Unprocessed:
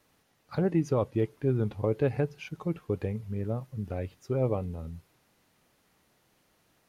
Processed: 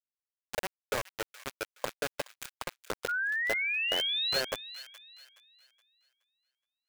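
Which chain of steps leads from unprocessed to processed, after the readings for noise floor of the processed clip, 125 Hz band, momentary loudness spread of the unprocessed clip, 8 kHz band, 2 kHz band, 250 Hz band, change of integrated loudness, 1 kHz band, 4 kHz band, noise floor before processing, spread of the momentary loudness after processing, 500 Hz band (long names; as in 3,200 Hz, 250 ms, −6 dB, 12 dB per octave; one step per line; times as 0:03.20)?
below −85 dBFS, −24.0 dB, 10 LU, can't be measured, +16.0 dB, −18.5 dB, −1.0 dB, +1.5 dB, +23.5 dB, −70 dBFS, 15 LU, −8.5 dB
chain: Butterworth high-pass 500 Hz 48 dB per octave
high-shelf EQ 3,700 Hz −8 dB
downward compressor 16 to 1, threshold −38 dBFS, peak gain reduction 13.5 dB
pitch vibrato 4.2 Hz 10 cents
bit reduction 6 bits
sound drawn into the spectrogram rise, 0:03.08–0:04.41, 1,400–4,400 Hz −38 dBFS
on a send: delay with a high-pass on its return 421 ms, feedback 34%, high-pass 1,700 Hz, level −14 dB
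on the sum: level +7 dB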